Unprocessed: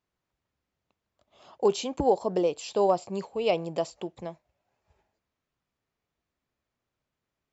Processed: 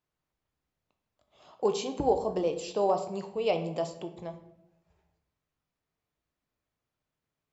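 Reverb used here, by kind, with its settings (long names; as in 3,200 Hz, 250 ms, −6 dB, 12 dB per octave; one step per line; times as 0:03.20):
rectangular room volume 210 cubic metres, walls mixed, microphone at 0.48 metres
level −3.5 dB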